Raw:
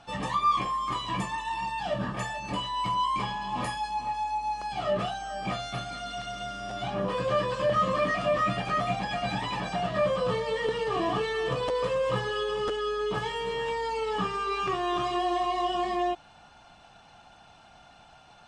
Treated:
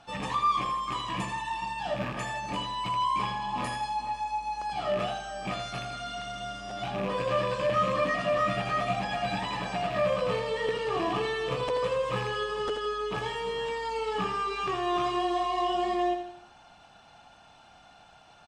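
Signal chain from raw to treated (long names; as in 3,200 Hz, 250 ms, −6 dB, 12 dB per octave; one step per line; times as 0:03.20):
loose part that buzzes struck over −34 dBFS, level −28 dBFS
low-shelf EQ 130 Hz −3.5 dB
repeating echo 82 ms, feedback 45%, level −8 dB
level −1.5 dB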